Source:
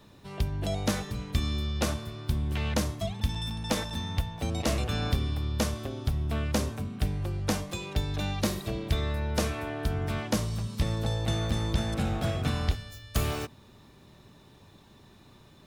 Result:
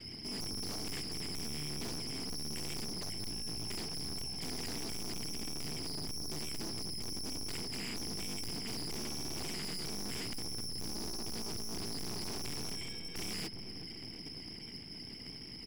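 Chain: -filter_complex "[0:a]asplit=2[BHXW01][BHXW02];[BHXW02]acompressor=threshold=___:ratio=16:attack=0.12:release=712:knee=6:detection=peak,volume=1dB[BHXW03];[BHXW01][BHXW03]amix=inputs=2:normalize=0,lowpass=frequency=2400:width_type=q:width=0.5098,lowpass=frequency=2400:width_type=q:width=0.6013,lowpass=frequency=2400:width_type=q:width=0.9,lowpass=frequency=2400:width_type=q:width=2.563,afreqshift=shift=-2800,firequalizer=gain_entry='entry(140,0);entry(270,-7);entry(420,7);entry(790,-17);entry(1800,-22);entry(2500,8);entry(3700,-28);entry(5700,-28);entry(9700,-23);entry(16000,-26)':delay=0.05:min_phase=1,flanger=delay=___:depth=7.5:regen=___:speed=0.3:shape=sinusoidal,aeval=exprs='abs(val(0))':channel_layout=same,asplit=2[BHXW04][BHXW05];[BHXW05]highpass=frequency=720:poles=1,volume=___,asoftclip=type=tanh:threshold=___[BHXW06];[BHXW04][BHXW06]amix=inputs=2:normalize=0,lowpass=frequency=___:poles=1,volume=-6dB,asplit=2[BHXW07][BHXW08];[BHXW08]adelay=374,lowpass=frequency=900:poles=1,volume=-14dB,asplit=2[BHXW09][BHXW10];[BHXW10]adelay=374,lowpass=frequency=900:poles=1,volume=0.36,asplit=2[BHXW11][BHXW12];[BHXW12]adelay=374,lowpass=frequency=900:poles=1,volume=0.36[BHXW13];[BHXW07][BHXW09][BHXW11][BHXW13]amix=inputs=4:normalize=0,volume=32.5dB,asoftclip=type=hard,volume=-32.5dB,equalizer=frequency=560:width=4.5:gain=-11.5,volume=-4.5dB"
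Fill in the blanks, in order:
-35dB, 9.6, 36, 30dB, -12dB, 1300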